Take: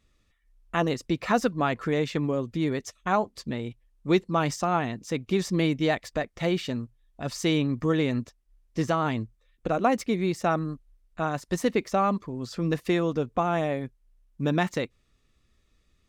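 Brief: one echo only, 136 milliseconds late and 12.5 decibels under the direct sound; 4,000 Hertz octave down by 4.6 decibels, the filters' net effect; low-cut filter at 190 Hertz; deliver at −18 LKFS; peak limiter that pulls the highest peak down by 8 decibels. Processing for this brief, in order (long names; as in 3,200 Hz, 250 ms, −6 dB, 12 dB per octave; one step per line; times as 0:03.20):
high-pass filter 190 Hz
parametric band 4,000 Hz −6 dB
brickwall limiter −17.5 dBFS
single-tap delay 136 ms −12.5 dB
level +12 dB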